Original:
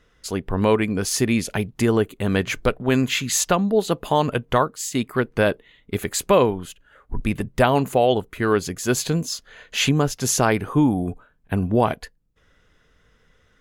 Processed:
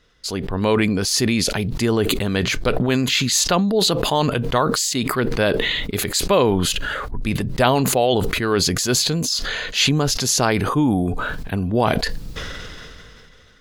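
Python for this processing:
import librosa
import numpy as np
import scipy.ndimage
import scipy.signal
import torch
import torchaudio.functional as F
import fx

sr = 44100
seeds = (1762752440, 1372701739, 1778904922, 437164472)

y = fx.peak_eq(x, sr, hz=4400.0, db=9.5, octaves=0.82)
y = fx.sustainer(y, sr, db_per_s=21.0)
y = F.gain(torch.from_numpy(y), -1.0).numpy()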